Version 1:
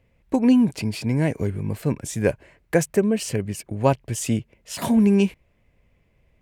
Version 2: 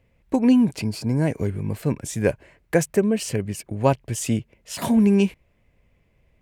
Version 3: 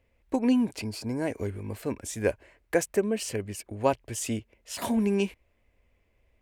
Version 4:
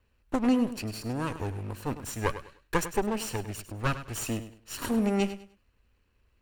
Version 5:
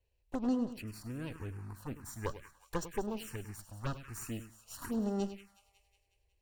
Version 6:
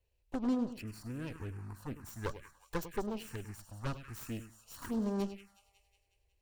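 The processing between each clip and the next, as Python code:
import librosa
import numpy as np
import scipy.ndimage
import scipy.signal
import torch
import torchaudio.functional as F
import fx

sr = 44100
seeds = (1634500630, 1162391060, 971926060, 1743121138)

y1 = fx.spec_box(x, sr, start_s=0.86, length_s=0.41, low_hz=1700.0, high_hz=4000.0, gain_db=-9)
y2 = fx.peak_eq(y1, sr, hz=150.0, db=-14.5, octaves=0.7)
y2 = F.gain(torch.from_numpy(y2), -4.0).numpy()
y3 = fx.lower_of_two(y2, sr, delay_ms=0.71)
y3 = fx.echo_feedback(y3, sr, ms=101, feedback_pct=26, wet_db=-12.5)
y4 = fx.echo_wet_highpass(y3, sr, ms=183, feedback_pct=56, hz=1400.0, wet_db=-13.0)
y4 = fx.env_phaser(y4, sr, low_hz=220.0, high_hz=2300.0, full_db=-23.5)
y4 = F.gain(torch.from_numpy(y4), -7.5).numpy()
y5 = fx.self_delay(y4, sr, depth_ms=0.22)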